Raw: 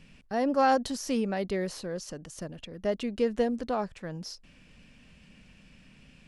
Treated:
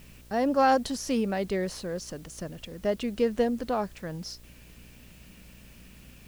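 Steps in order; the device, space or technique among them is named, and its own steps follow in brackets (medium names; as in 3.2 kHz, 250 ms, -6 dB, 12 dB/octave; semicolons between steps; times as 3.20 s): video cassette with head-switching buzz (mains buzz 60 Hz, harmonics 11, -55 dBFS -7 dB/octave; white noise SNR 29 dB); trim +1.5 dB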